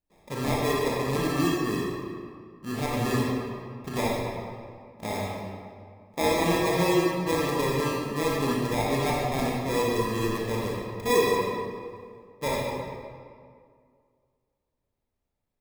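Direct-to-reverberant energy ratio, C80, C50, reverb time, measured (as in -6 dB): -4.5 dB, 0.5 dB, -2.0 dB, 2.1 s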